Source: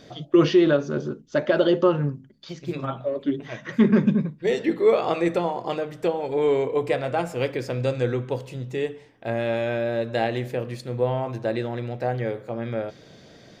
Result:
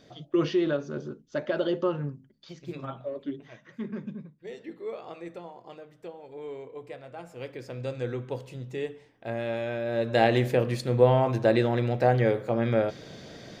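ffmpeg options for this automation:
-af "volume=14dB,afade=t=out:st=3.15:d=0.54:silence=0.316228,afade=t=in:st=7.14:d=1.25:silence=0.251189,afade=t=in:st=9.84:d=0.49:silence=0.316228"

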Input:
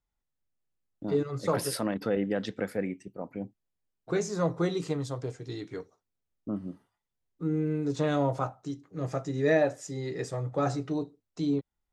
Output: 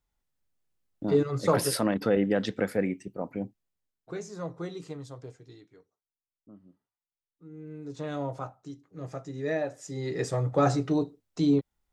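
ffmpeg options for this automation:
-af "volume=27.5dB,afade=t=out:st=3.29:d=0.85:silence=0.237137,afade=t=out:st=5.3:d=0.4:silence=0.316228,afade=t=in:st=7.49:d=0.73:silence=0.237137,afade=t=in:st=9.71:d=0.6:silence=0.281838"

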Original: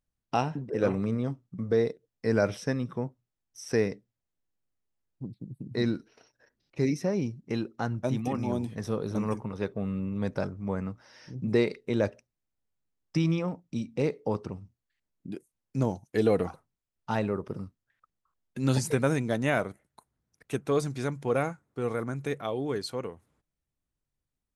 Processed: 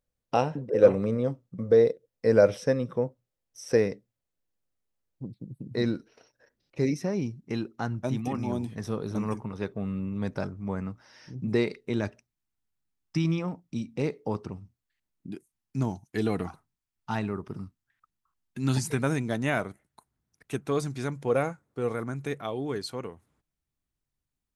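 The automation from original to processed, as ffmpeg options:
-af "asetnsamples=n=441:p=0,asendcmd='3.77 equalizer g 4.5;6.94 equalizer g -4;11.99 equalizer g -13.5;13.25 equalizer g -4.5;15.34 equalizer g -13.5;18.98 equalizer g -5;21.11 equalizer g 3;21.92 equalizer g -3.5',equalizer=f=520:t=o:w=0.42:g=11.5"

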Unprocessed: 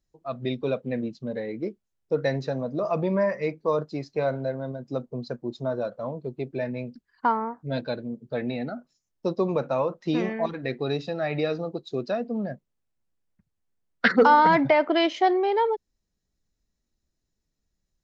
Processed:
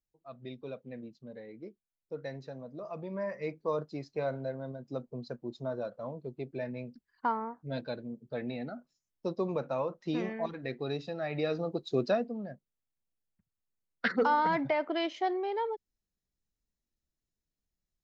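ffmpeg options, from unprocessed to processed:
-af "volume=1dB,afade=t=in:st=3.09:d=0.45:silence=0.421697,afade=t=in:st=11.32:d=0.75:silence=0.375837,afade=t=out:st=12.07:d=0.28:silence=0.281838"

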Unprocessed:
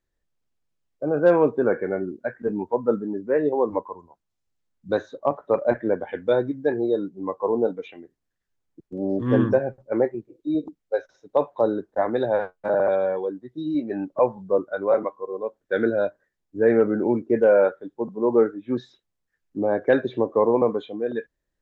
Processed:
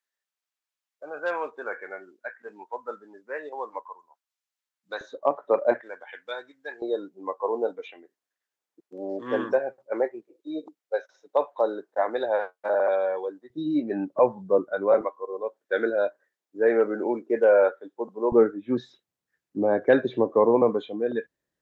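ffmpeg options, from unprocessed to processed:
-af "asetnsamples=n=441:p=0,asendcmd='5.01 highpass f 340;5.81 highpass f 1400;6.82 highpass f 520;13.5 highpass f 140;15.01 highpass f 420;18.32 highpass f 120',highpass=1.1k"

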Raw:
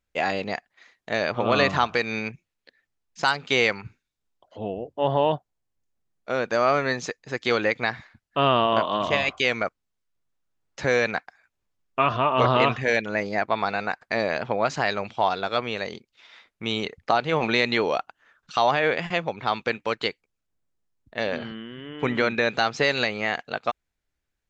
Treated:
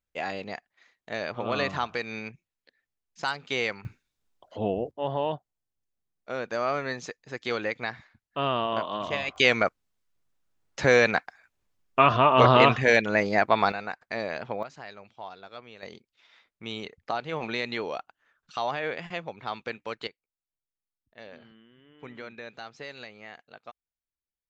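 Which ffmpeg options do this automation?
-af "asetnsamples=n=441:p=0,asendcmd='3.85 volume volume 3dB;4.91 volume volume -7dB;9.36 volume volume 2.5dB;13.72 volume volume -7dB;14.63 volume volume -18.5dB;15.83 volume volume -9dB;20.07 volume volume -19dB',volume=-7.5dB"

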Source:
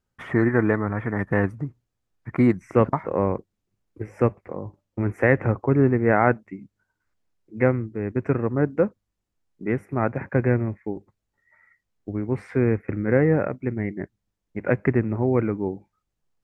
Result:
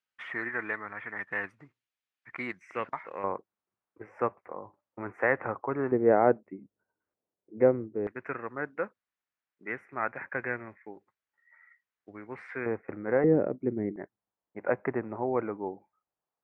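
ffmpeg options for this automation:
-af "asetnsamples=n=441:p=0,asendcmd='3.24 bandpass f 1100;5.92 bandpass f 490;8.07 bandpass f 1700;12.66 bandpass f 850;13.24 bandpass f 370;13.96 bandpass f 860',bandpass=f=2.6k:t=q:w=1.3:csg=0"

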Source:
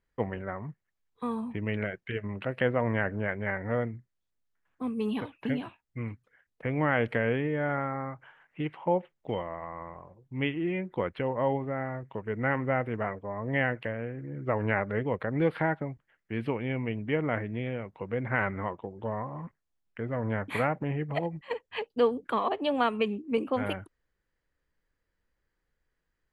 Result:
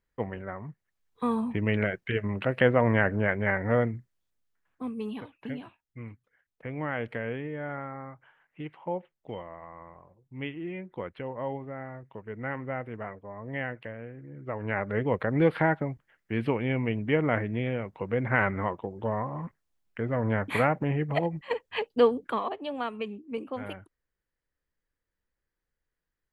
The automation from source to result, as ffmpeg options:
-af "volume=14.5dB,afade=t=in:st=0.68:d=0.59:silence=0.473151,afade=t=out:st=3.89:d=1.27:silence=0.281838,afade=t=in:st=14.6:d=0.53:silence=0.334965,afade=t=out:st=22.02:d=0.56:silence=0.316228"

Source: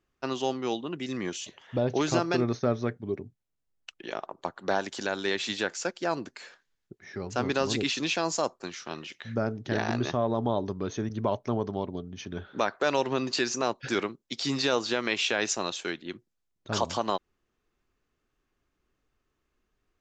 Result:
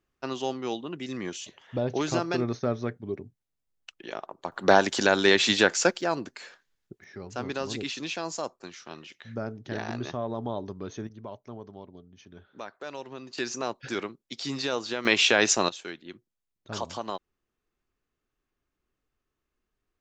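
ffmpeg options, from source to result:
-af "asetnsamples=n=441:p=0,asendcmd='4.52 volume volume 9dB;6.01 volume volume 1.5dB;7.04 volume volume -5dB;11.07 volume volume -13dB;13.38 volume volume -3.5dB;15.05 volume volume 6.5dB;15.69 volume volume -5.5dB',volume=-1.5dB"

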